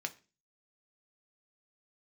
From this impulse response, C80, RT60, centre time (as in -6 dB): 24.0 dB, 0.35 s, 4 ms